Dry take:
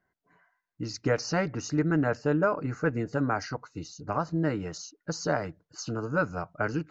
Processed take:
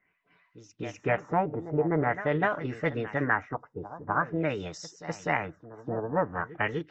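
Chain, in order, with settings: formant shift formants +4 st; pre-echo 0.25 s -14 dB; LFO low-pass sine 0.46 Hz 780–4700 Hz; gain -2 dB

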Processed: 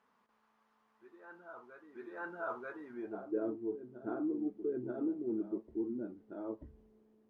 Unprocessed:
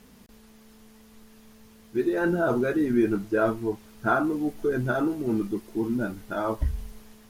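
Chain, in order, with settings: reverse echo 0.936 s -10.5 dB; band-pass sweep 1100 Hz -> 350 Hz, 2.88–3.38; gain -7.5 dB

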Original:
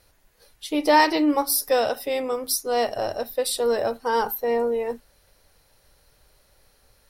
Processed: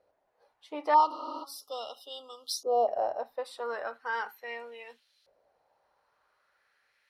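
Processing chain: LFO band-pass saw up 0.38 Hz 560–4000 Hz; 0.94–2.88 brick-wall FIR band-stop 1400–2800 Hz; 1.13–1.41 spectral repair 220–9500 Hz before

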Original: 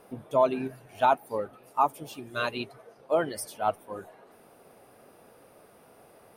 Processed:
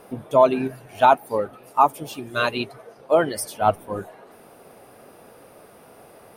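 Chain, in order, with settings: 3.61–4.03 low shelf 180 Hz +11 dB; gain +7.5 dB

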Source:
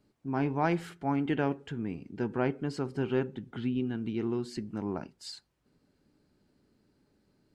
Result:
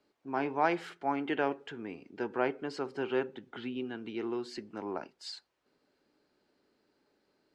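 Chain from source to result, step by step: three-band isolator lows -19 dB, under 330 Hz, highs -12 dB, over 6200 Hz; gain +2 dB

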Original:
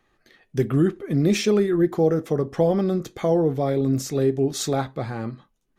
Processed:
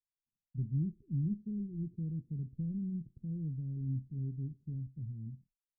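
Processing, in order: expander -42 dBFS; inverse Chebyshev low-pass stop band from 820 Hz, stop band 70 dB; gain -8.5 dB

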